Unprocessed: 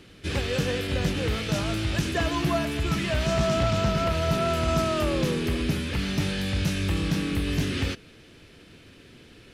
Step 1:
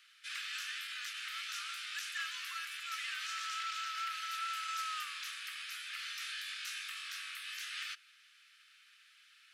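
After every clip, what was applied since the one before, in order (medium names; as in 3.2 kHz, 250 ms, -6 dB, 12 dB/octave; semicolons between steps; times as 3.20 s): steep high-pass 1.2 kHz 96 dB/octave; trim -7.5 dB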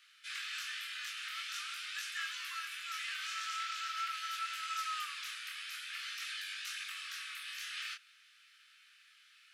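chorus 0.46 Hz, delay 19.5 ms, depth 7.3 ms; trim +3 dB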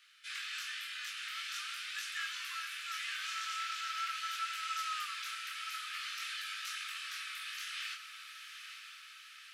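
echo that smears into a reverb 939 ms, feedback 59%, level -8.5 dB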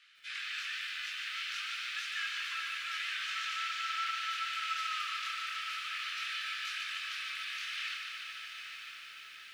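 band-pass filter 2.3 kHz, Q 0.77; reverberation RT60 5.0 s, pre-delay 8 ms, DRR 17.5 dB; bit-crushed delay 148 ms, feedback 80%, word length 11-bit, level -6 dB; trim +2.5 dB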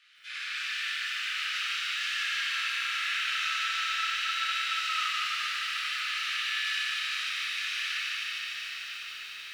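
Schroeder reverb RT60 3.6 s, combs from 26 ms, DRR -6 dB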